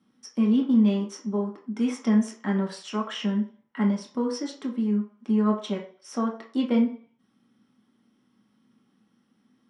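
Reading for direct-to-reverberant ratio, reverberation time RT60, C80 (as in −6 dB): −1.5 dB, 0.50 s, 13.5 dB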